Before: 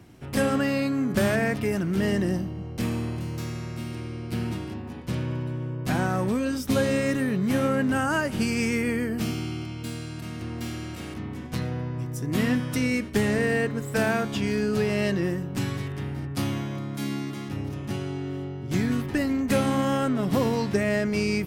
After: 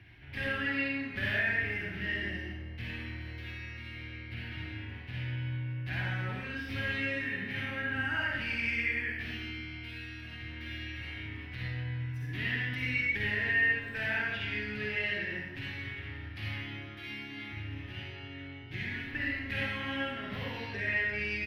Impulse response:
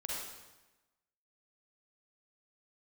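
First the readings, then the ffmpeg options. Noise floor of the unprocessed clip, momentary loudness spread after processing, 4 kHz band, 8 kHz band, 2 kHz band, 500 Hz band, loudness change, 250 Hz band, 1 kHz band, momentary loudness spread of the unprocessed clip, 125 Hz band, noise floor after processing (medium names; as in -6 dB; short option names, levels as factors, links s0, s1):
-36 dBFS, 13 LU, -3.5 dB, under -20 dB, +1.5 dB, -16.5 dB, -7.0 dB, -16.5 dB, -13.0 dB, 10 LU, -9.0 dB, -44 dBFS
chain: -filter_complex "[0:a]firequalizer=gain_entry='entry(120,0);entry(170,-14);entry(310,-8);entry(500,-15);entry(770,-8);entry(1200,-11);entry(1700,8);entry(2600,7);entry(7500,-27);entry(11000,-17)':delay=0.05:min_phase=1,areverse,acompressor=mode=upward:threshold=0.0316:ratio=2.5,areverse[s0];[1:a]atrim=start_sample=2205[s1];[s0][s1]afir=irnorm=-1:irlink=0,volume=0.447"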